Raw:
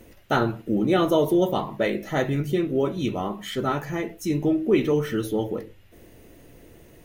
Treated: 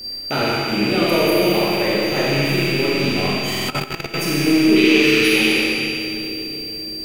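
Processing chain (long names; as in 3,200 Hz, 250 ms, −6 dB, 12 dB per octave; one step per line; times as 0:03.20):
loose part that buzzes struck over −36 dBFS, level −18 dBFS
0:04.76–0:05.58: meter weighting curve D
in parallel at −1 dB: downward compressor 12 to 1, threshold −28 dBFS, peak gain reduction 14.5 dB
on the sum: steady tone 4,700 Hz −30 dBFS
high-shelf EQ 6,800 Hz +10 dB
echo with a time of its own for lows and highs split 520 Hz, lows 727 ms, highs 81 ms, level −15 dB
four-comb reverb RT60 2.5 s, combs from 28 ms, DRR −6 dB
0:03.57–0:04.14: output level in coarse steps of 15 dB
buffer that repeats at 0:03.50, samples 2,048, times 3
level −5 dB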